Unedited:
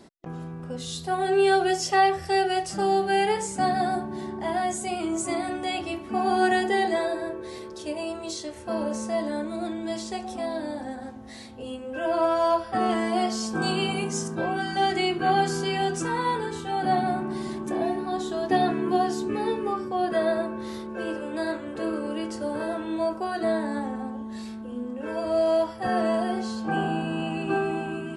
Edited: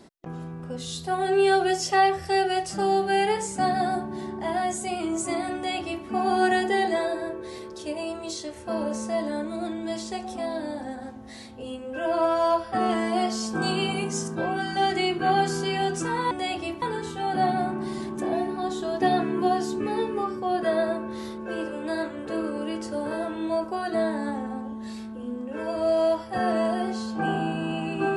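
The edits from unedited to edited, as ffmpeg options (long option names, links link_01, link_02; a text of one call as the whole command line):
ffmpeg -i in.wav -filter_complex "[0:a]asplit=3[link_01][link_02][link_03];[link_01]atrim=end=16.312[link_04];[link_02]atrim=start=5.548:end=6.062[link_05];[link_03]atrim=start=16.308[link_06];[link_04][link_05]acrossfade=duration=0.004:curve1=hsin:curve2=hsin[link_07];[link_07][link_06]acrossfade=duration=0.004:curve1=hsin:curve2=hsin" out.wav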